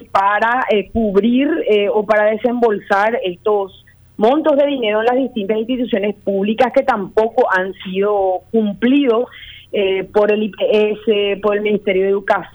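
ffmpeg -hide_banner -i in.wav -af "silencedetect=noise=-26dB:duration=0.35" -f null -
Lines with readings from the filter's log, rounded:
silence_start: 3.66
silence_end: 4.19 | silence_duration: 0.53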